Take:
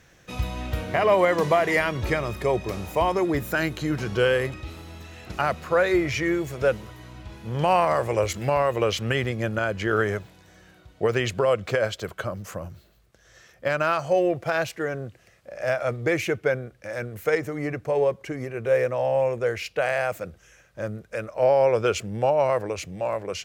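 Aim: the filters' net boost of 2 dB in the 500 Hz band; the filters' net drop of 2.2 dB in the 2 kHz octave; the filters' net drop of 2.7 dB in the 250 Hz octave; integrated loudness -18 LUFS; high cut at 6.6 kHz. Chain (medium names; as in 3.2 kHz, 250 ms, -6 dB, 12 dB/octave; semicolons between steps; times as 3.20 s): low-pass 6.6 kHz; peaking EQ 250 Hz -7 dB; peaking EQ 500 Hz +4 dB; peaking EQ 2 kHz -3 dB; trim +6 dB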